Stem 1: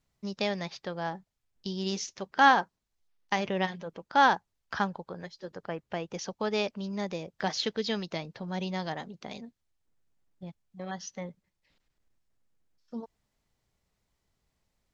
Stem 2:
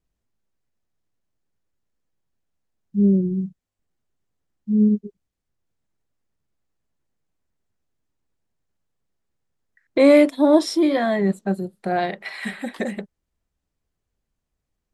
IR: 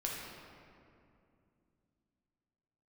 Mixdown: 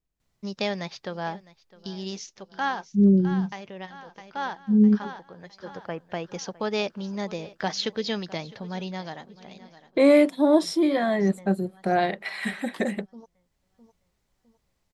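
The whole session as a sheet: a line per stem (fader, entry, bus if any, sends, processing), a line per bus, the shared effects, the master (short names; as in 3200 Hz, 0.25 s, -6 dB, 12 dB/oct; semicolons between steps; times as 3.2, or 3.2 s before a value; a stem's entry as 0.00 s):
+2.5 dB, 0.20 s, no send, echo send -20.5 dB, auto duck -12 dB, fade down 1.40 s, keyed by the second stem
-6.0 dB, 0.00 s, no send, no echo send, AGC gain up to 6 dB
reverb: off
echo: feedback echo 0.658 s, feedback 43%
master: dry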